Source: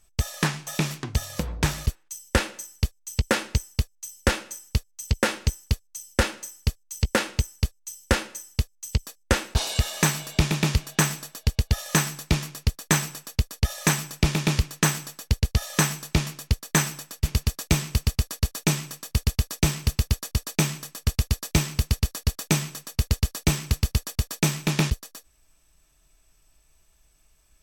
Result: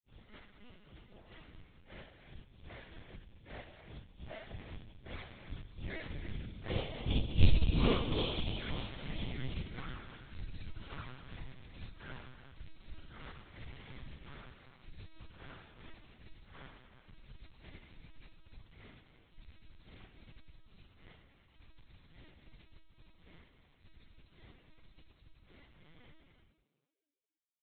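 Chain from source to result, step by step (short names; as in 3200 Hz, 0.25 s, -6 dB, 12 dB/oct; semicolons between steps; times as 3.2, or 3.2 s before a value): phase scrambler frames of 0.2 s; Doppler pass-by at 7.38, 58 m/s, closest 5.6 m; in parallel at +1.5 dB: compressor 20:1, threshold -57 dBFS, peak gain reduction 34 dB; on the sum: envelope flanger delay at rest 8.1 ms, full sweep at -41.5 dBFS; on a send: frequency-shifting echo 0.276 s, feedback 33%, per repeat +120 Hz, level -18.5 dB; on the sum: non-linear reverb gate 0.42 s flat, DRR 5 dB; LPC vocoder at 8 kHz pitch kept; gain +7 dB; Vorbis 48 kbps 44100 Hz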